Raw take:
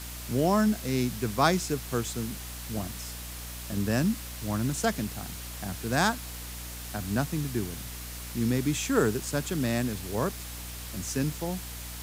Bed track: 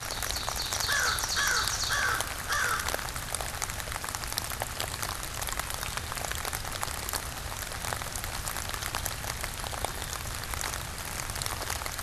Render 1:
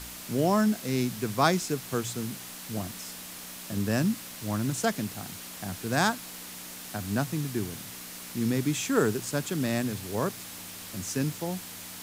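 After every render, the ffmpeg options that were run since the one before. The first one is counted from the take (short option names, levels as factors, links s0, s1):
-af "bandreject=f=60:t=h:w=4,bandreject=f=120:t=h:w=4"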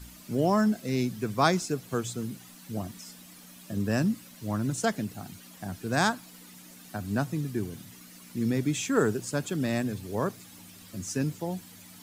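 -af "afftdn=nr=12:nf=-42"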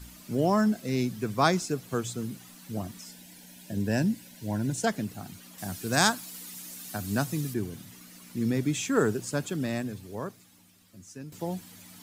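-filter_complex "[0:a]asettb=1/sr,asplit=3[s0][s1][s2];[s0]atrim=end=3.064[s3];[s1]atrim=start=3.06:end=4.87,asetpts=PTS-STARTPTS,afade=t=in:d=0.004:c=qsin,afade=t=out:st=1.806:d=0.004:c=qsin,asuperstop=centerf=1200:order=8:qfactor=3.4[s4];[s2]atrim=start=4.866[s5];[s3][s4]acrossfade=d=0.004:c1=hsin:c2=qsin[s6];[s6][s5]acrossfade=d=0.004:c1=qsin:c2=hsin,asettb=1/sr,asplit=3[s7][s8][s9];[s7]atrim=end=5.584[s10];[s8]atrim=start=5.58:end=7.54,asetpts=PTS-STARTPTS,afade=t=in:d=0.004:c=qsin,afade=t=out:st=1.956:d=0.004:c=qsin,highshelf=f=3400:g=10.5[s11];[s9]atrim=start=7.536[s12];[s10][s11]acrossfade=d=0.004:c1=hsin:c2=qsin[s13];[s13][s12]acrossfade=d=0.004:c1=qsin:c2=hsin,asplit=2[s14][s15];[s14]atrim=end=11.32,asetpts=PTS-STARTPTS,afade=t=out:st=9.39:d=1.93:c=qua:silence=0.211349[s16];[s15]atrim=start=11.32,asetpts=PTS-STARTPTS,afade=t=in:d=0.004:c=hsin:silence=0.211349[s17];[s16][s17]concat=n=2:v=0:a=1"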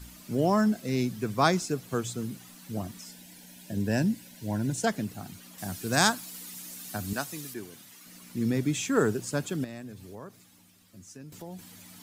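-filter_complex "[0:a]asettb=1/sr,asplit=3[s0][s1][s2];[s0]atrim=end=7.134[s3];[s1]atrim=start=7.13:end=8.06,asetpts=PTS-STARTPTS,afade=t=in:d=0.004:c=qsin,afade=t=out:st=0.926:d=0.004:c=qsin,highpass=f=710:p=1[s4];[s2]atrim=start=8.056[s5];[s3][s4]acrossfade=d=0.004:c1=hsin:c2=qsin[s6];[s6][s5]acrossfade=d=0.004:c1=qsin:c2=hsin,asettb=1/sr,asplit=3[s7][s8][s9];[s7]atrim=end=9.644[s10];[s8]atrim=start=9.64:end=11.59,asetpts=PTS-STARTPTS,afade=t=in:d=0.004:c=qsin,afade=t=out:st=1.946:d=0.004:c=qsin,acompressor=threshold=0.00794:ratio=2.5:attack=3.2:release=140:knee=1:detection=peak[s11];[s9]atrim=start=11.586[s12];[s10][s11]acrossfade=d=0.004:c1=hsin:c2=qsin[s13];[s13][s12]acrossfade=d=0.004:c1=qsin:c2=hsin"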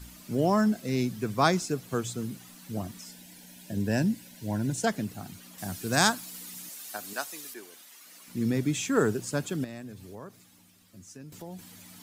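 -filter_complex "[0:a]asettb=1/sr,asplit=3[s0][s1][s2];[s0]atrim=end=6.694[s3];[s1]atrim=start=6.69:end=8.28,asetpts=PTS-STARTPTS,afade=t=in:d=0.004:c=qsin,afade=t=out:st=1.586:d=0.004:c=qsin,highpass=460[s4];[s2]atrim=start=8.276[s5];[s3][s4]acrossfade=d=0.004:c1=hsin:c2=qsin[s6];[s6][s5]acrossfade=d=0.004:c1=qsin:c2=hsin"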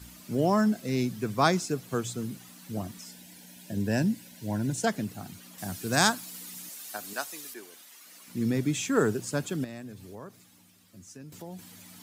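-af "highpass=62"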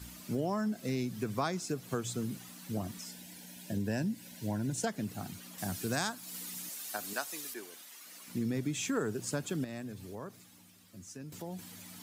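-af "acompressor=threshold=0.0282:ratio=4"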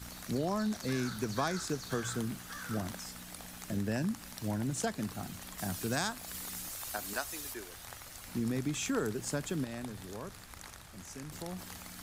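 -filter_complex "[1:a]volume=0.15[s0];[0:a][s0]amix=inputs=2:normalize=0"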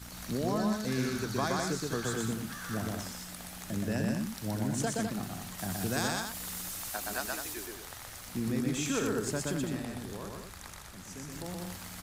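-af "aecho=1:1:122.4|204.1:0.794|0.447"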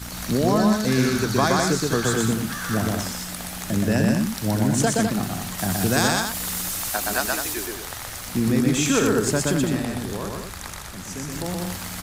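-af "volume=3.76"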